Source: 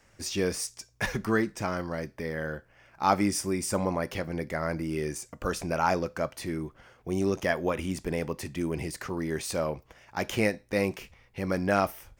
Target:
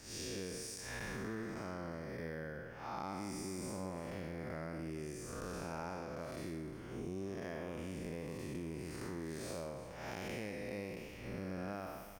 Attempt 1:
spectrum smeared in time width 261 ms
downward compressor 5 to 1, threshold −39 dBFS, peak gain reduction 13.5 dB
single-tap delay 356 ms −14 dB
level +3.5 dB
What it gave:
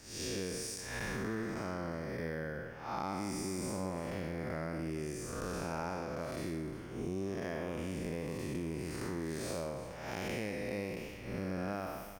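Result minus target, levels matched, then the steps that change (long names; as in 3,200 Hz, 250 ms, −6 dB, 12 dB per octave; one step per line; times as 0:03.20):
downward compressor: peak gain reduction −5 dB
change: downward compressor 5 to 1, threshold −45 dBFS, peak gain reduction 18.5 dB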